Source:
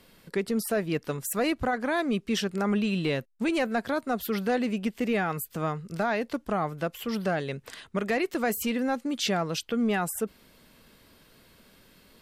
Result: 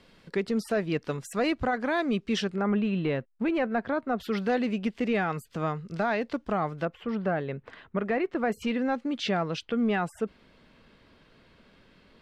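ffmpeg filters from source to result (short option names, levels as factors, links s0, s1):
-af "asetnsamples=n=441:p=0,asendcmd='2.55 lowpass f 2100;4.2 lowpass f 4800;6.85 lowpass f 1900;8.52 lowpass f 3400',lowpass=5300"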